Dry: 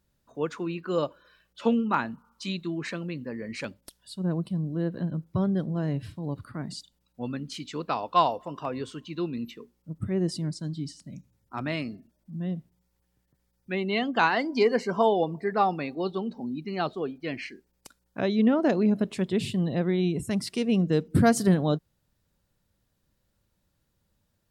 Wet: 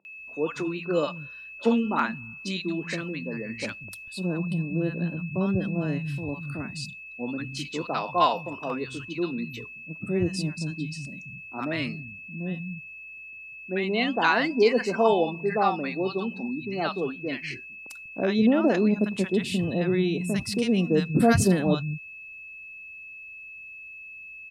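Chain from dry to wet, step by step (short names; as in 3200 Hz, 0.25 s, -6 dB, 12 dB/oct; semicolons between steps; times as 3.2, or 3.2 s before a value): whine 2600 Hz -43 dBFS; three bands offset in time mids, highs, lows 50/190 ms, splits 160/870 Hz; gain +3 dB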